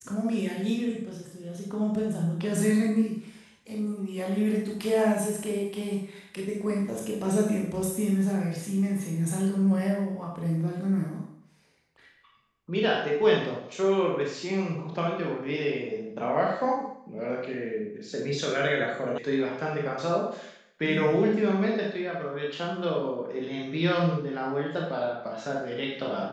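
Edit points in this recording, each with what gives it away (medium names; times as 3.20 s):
19.18 s: sound stops dead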